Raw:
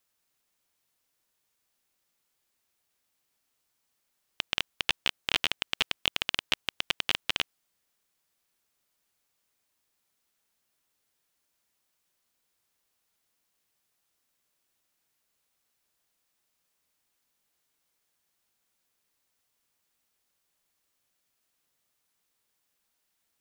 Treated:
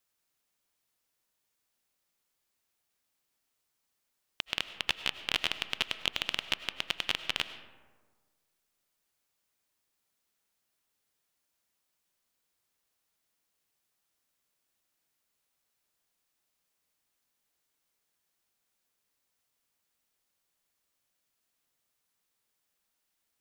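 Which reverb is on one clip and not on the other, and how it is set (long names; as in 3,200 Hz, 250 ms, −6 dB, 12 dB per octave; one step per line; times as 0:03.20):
comb and all-pass reverb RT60 1.5 s, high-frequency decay 0.4×, pre-delay 60 ms, DRR 11.5 dB
level −3 dB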